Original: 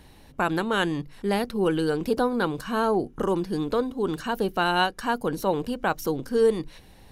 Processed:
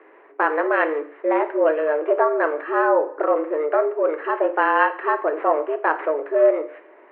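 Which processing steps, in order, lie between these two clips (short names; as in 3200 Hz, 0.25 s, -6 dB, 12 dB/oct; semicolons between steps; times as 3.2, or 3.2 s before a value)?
careless resampling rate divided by 8×, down none, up hold; two-slope reverb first 0.47 s, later 2.1 s, from -26 dB, DRR 7 dB; mistuned SSB +150 Hz 180–2100 Hz; gain +5 dB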